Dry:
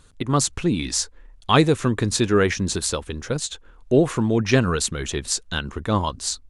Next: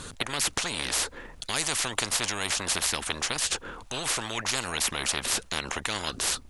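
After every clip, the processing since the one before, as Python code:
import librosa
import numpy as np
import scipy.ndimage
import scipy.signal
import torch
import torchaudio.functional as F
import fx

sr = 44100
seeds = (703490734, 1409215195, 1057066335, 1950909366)

y = fx.spectral_comp(x, sr, ratio=10.0)
y = F.gain(torch.from_numpy(y), -5.5).numpy()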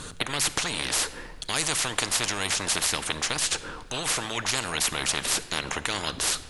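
y = fx.room_shoebox(x, sr, seeds[0], volume_m3=2000.0, walls='mixed', distance_m=0.49)
y = F.gain(torch.from_numpy(y), 1.5).numpy()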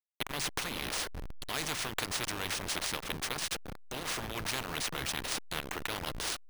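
y = fx.delta_hold(x, sr, step_db=-26.0)
y = np.repeat(scipy.signal.resample_poly(y, 1, 3), 3)[:len(y)]
y = F.gain(torch.from_numpy(y), -7.0).numpy()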